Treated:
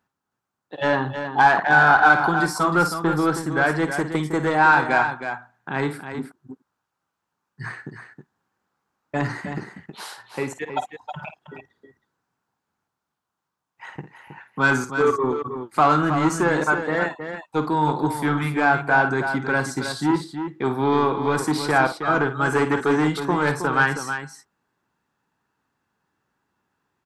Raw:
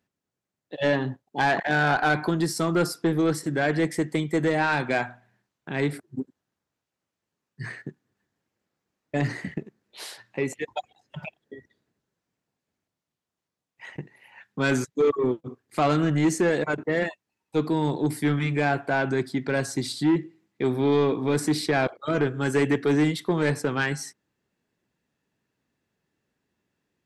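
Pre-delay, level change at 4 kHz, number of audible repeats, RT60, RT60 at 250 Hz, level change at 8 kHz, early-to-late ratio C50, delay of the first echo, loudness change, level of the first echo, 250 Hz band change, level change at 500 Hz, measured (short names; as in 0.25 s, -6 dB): none, +1.0 dB, 2, none, none, +1.0 dB, none, 52 ms, +4.0 dB, -11.0 dB, +1.0 dB, +1.5 dB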